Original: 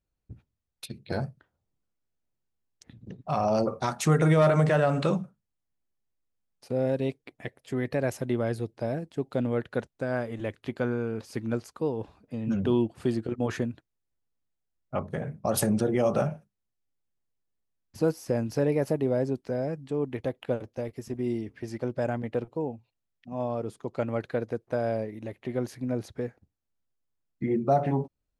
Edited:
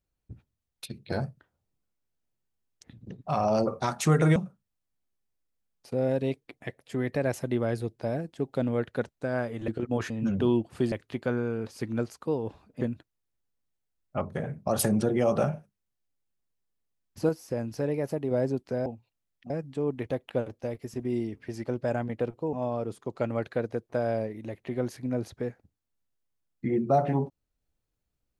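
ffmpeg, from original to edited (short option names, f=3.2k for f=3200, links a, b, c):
-filter_complex "[0:a]asplit=11[a][b][c][d][e][f][g][h][i][j][k];[a]atrim=end=4.362[l];[b]atrim=start=5.138:end=10.462[m];[c]atrim=start=13.168:end=13.592[n];[d]atrim=start=12.348:end=13.172[o];[e]atrim=start=10.458:end=12.352[p];[f]atrim=start=13.588:end=18.072[q];[g]atrim=start=18.068:end=19.092,asetpts=PTS-STARTPTS,volume=-4dB[r];[h]atrim=start=19.088:end=19.642[s];[i]atrim=start=22.668:end=23.312[t];[j]atrim=start=19.638:end=22.672[u];[k]atrim=start=23.308[v];[l][m]acrossfade=d=0.004:c1=hsin:c2=hsin[w];[w][n]acrossfade=d=0.004:c1=hsin:c2=hsin[x];[x][o]acrossfade=d=0.004:c1=hsin:c2=hsin[y];[y][p]acrossfade=d=0.004:c1=hsin:c2=hsin[z];[z][q]acrossfade=d=0.004:c1=hsin:c2=hsin[aa];[aa][r]acrossfade=d=0.004:c1=hsin:c2=hsin[ab];[ab][s]acrossfade=d=0.004:c1=hsin:c2=hsin[ac];[ac][t]acrossfade=d=0.004:c1=hsin:c2=hsin[ad];[ad][u]acrossfade=d=0.004:c1=hsin:c2=hsin[ae];[ae][v]acrossfade=d=0.004:c1=hsin:c2=hsin"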